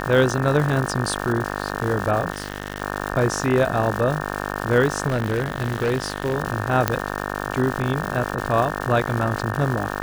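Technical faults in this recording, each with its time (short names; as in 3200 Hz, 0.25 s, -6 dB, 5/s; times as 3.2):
buzz 50 Hz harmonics 36 -28 dBFS
crackle 320/s -26 dBFS
2.32–2.82 clipped -20.5 dBFS
5.07–6.35 clipped -17 dBFS
6.88 pop -3 dBFS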